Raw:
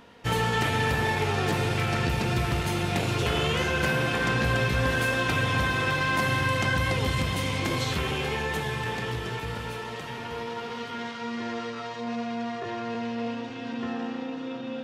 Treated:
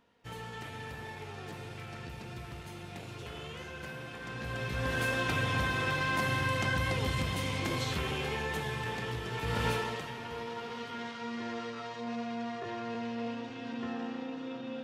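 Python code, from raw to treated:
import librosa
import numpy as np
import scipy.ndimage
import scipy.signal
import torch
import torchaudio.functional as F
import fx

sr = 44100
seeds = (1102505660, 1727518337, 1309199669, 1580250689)

y = fx.gain(x, sr, db=fx.line((4.21, -17.5), (5.03, -5.5), (9.3, -5.5), (9.67, 5.0), (10.14, -5.5)))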